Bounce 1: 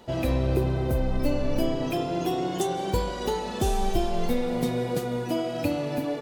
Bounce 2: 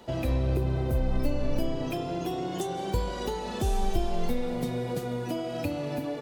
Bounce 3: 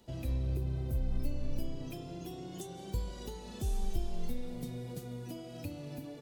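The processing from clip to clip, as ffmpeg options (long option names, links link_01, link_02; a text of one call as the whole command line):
ffmpeg -i in.wav -filter_complex "[0:a]acrossover=split=130[link_01][link_02];[link_02]acompressor=threshold=-31dB:ratio=2.5[link_03];[link_01][link_03]amix=inputs=2:normalize=0" out.wav
ffmpeg -i in.wav -af "equalizer=frequency=980:width=0.31:gain=-12,volume=-5dB" out.wav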